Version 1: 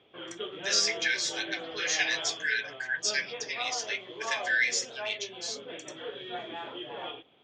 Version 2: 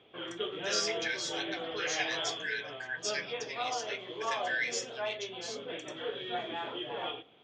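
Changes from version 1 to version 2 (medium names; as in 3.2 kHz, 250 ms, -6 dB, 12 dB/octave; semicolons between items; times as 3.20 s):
speech -9.0 dB; reverb: on, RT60 0.45 s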